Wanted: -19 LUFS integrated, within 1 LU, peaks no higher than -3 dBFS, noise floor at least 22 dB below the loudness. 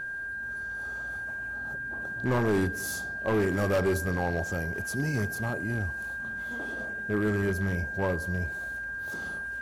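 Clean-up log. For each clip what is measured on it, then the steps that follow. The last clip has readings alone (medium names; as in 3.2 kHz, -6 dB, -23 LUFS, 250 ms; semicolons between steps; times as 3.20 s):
clipped samples 1.4%; clipping level -21.0 dBFS; steady tone 1.6 kHz; tone level -33 dBFS; loudness -30.5 LUFS; peak level -21.0 dBFS; loudness target -19.0 LUFS
-> clip repair -21 dBFS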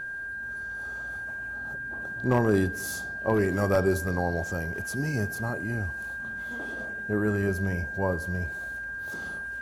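clipped samples 0.0%; steady tone 1.6 kHz; tone level -33 dBFS
-> band-stop 1.6 kHz, Q 30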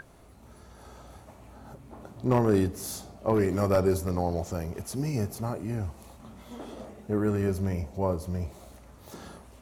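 steady tone not found; loudness -29.0 LUFS; peak level -11.5 dBFS; loudness target -19.0 LUFS
-> trim +10 dB; peak limiter -3 dBFS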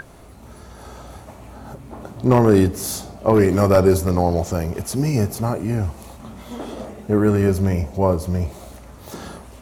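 loudness -19.0 LUFS; peak level -3.0 dBFS; noise floor -42 dBFS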